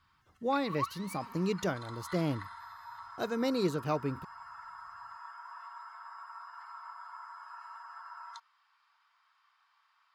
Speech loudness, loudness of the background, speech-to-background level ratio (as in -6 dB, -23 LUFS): -34.0 LUFS, -46.0 LUFS, 12.0 dB